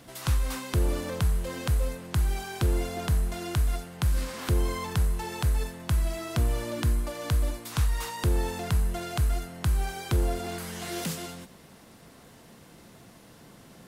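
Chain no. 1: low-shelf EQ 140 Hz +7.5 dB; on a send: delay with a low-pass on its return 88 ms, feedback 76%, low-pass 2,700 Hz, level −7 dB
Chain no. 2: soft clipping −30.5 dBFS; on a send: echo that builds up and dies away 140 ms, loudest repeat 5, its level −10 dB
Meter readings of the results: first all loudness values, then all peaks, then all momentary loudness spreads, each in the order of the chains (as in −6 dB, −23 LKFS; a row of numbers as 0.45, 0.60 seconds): −23.5, −35.0 LKFS; −9.0, −22.0 dBFS; 4, 6 LU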